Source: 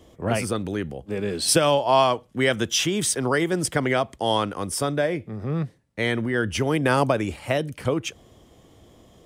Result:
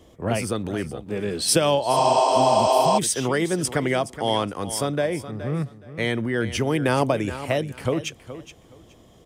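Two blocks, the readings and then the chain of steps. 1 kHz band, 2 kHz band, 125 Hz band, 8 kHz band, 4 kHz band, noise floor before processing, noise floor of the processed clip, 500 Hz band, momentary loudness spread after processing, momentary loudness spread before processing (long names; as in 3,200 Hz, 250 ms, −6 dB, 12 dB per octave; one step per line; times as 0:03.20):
+3.0 dB, −2.5 dB, 0.0 dB, −0.5 dB, −1.0 dB, −54 dBFS, −52 dBFS, +1.5 dB, 11 LU, 10 LU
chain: repeating echo 420 ms, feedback 21%, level −13.5 dB
healed spectral selection 0:01.96–0:02.95, 270–8,700 Hz before
dynamic equaliser 1,400 Hz, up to −4 dB, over −33 dBFS, Q 1.7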